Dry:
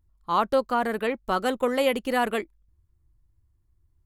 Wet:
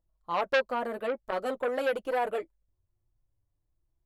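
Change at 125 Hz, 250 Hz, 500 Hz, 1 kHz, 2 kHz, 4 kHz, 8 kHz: n/a, -11.5 dB, -4.0 dB, -6.5 dB, -3.0 dB, -7.0 dB, under -10 dB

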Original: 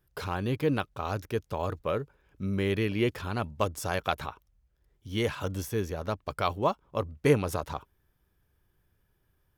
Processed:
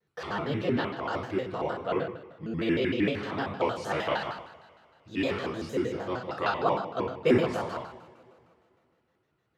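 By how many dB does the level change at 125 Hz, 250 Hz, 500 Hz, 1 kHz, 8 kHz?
-5.0, +2.5, +1.0, +1.5, -9.0 dB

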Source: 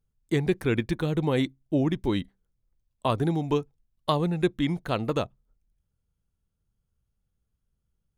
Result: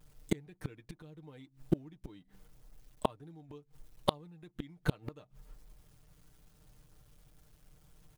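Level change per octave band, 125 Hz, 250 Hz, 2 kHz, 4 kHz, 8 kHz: -13.0, -14.0, -13.5, -9.5, -5.5 dB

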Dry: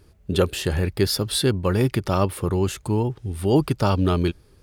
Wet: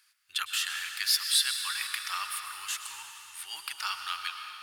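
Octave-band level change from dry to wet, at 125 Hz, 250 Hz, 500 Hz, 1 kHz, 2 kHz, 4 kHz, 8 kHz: under -40 dB, under -40 dB, under -40 dB, -9.0 dB, +0.5 dB, +1.0 dB, +1.0 dB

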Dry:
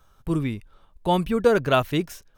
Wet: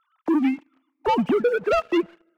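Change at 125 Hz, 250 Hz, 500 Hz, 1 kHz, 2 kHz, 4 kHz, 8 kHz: -14.0 dB, +3.0 dB, 0.0 dB, +0.5 dB, -0.5 dB, -5.0 dB, n/a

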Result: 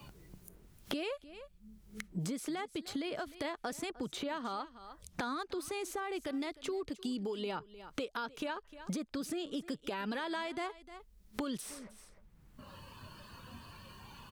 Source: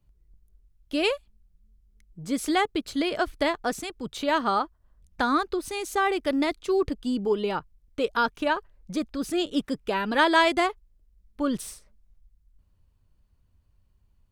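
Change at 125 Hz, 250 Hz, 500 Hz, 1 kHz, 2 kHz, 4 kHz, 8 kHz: -3.0, -11.0, -13.0, -15.0, -15.0, -11.5, -7.0 dB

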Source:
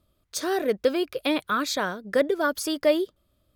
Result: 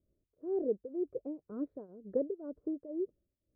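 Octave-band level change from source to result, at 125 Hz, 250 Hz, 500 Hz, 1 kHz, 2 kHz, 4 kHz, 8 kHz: under -10 dB, -10.0 dB, -11.5 dB, -28.5 dB, under -40 dB, under -40 dB, under -40 dB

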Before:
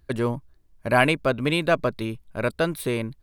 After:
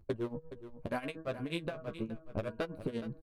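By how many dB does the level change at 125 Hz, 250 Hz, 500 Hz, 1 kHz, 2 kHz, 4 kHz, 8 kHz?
-14.0, -12.0, -14.0, -18.0, -20.0, -17.0, -21.5 dB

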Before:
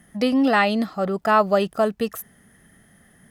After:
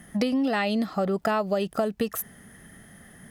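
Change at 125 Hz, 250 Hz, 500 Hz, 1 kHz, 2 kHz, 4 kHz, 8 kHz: -2.0, -4.0, -5.5, -8.5, -7.5, -4.5, +2.0 dB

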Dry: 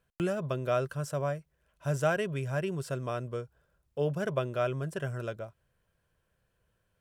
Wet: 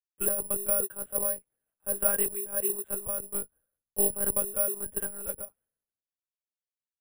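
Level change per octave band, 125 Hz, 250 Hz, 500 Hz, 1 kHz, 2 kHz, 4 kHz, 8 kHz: -17.5 dB, -6.5 dB, -2.5 dB, -7.0 dB, -7.0 dB, n/a, +21.5 dB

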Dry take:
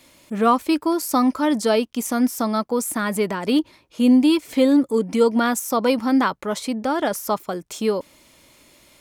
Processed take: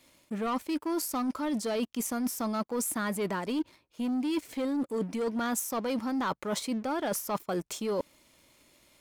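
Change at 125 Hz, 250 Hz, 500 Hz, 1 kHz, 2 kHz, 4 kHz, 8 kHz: -6.5, -12.0, -11.5, -11.5, -10.5, -10.5, -5.5 dB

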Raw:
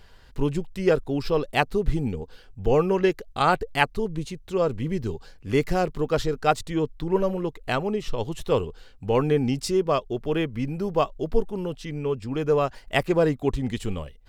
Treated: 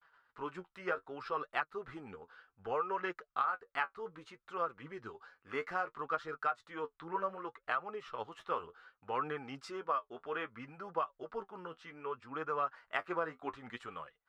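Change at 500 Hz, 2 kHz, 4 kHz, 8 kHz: -17.5 dB, -9.0 dB, -17.5 dB, under -20 dB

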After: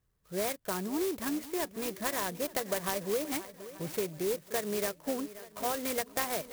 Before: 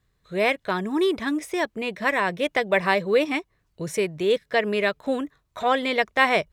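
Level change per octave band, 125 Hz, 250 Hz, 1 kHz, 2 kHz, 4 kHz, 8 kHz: -8.0, -9.0, -12.0, -16.0, -10.0, +5.0 dB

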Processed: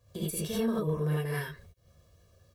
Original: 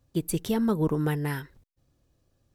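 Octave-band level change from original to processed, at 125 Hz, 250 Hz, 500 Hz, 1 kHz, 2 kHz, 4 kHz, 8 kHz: -2.5, -6.0, -2.5, -5.5, -2.0, -0.5, -1.0 dB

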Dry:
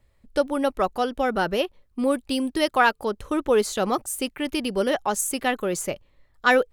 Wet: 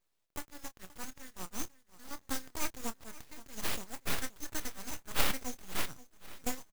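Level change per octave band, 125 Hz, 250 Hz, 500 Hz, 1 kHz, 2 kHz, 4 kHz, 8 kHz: -9.0, -19.0, -25.0, -19.5, -16.5, -10.5, -9.0 dB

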